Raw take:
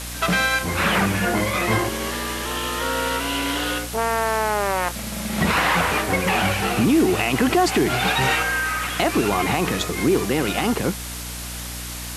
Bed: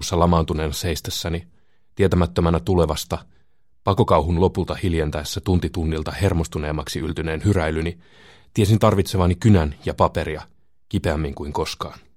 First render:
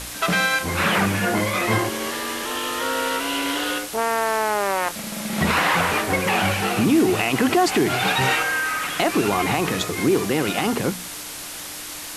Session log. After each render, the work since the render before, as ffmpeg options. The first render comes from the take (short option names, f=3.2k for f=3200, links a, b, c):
-af "bandreject=f=60:t=h:w=4,bandreject=f=120:t=h:w=4,bandreject=f=180:t=h:w=4,bandreject=f=240:t=h:w=4"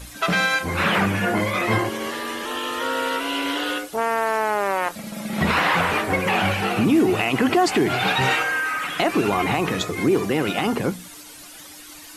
-af "afftdn=nr=12:nf=-34"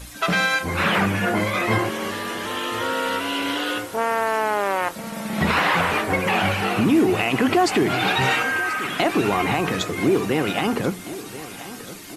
-af "aecho=1:1:1034|2068|3102|4136|5170:0.158|0.0872|0.0479|0.0264|0.0145"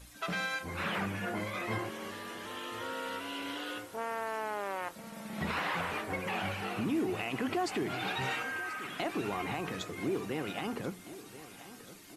-af "volume=-14.5dB"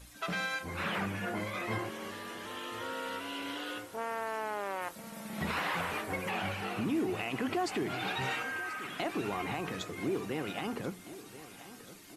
-filter_complex "[0:a]asettb=1/sr,asplit=3[a][b][c];[a]atrim=end=4.814[d];[b]atrim=start=4.81:end=6.3,asetpts=PTS-STARTPTS,afade=t=in:d=0.004:c=qsin,afade=t=out:st=1.486:d=0.004:c=qsin,highshelf=f=7.9k:g=6[e];[c]atrim=start=6.296[f];[d][e]acrossfade=d=0.004:c1=hsin:c2=qsin[g];[g][f]acrossfade=d=0.004:c1=qsin:c2=hsin"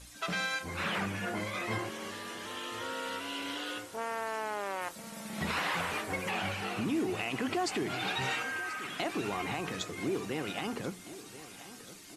-af "lowpass=7.4k,aemphasis=mode=production:type=50kf"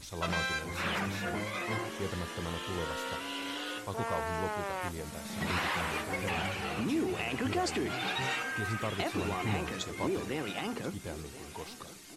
-filter_complex "[1:a]volume=-20.5dB[a];[0:a][a]amix=inputs=2:normalize=0"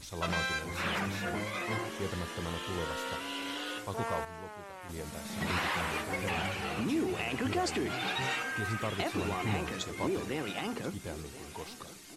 -filter_complex "[0:a]asplit=3[a][b][c];[a]atrim=end=4.25,asetpts=PTS-STARTPTS,afade=t=out:st=4:d=0.25:c=log:silence=0.298538[d];[b]atrim=start=4.25:end=4.89,asetpts=PTS-STARTPTS,volume=-10.5dB[e];[c]atrim=start=4.89,asetpts=PTS-STARTPTS,afade=t=in:d=0.25:c=log:silence=0.298538[f];[d][e][f]concat=n=3:v=0:a=1"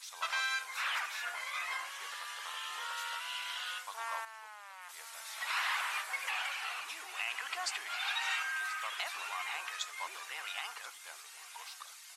-af "highpass=f=950:w=0.5412,highpass=f=950:w=1.3066"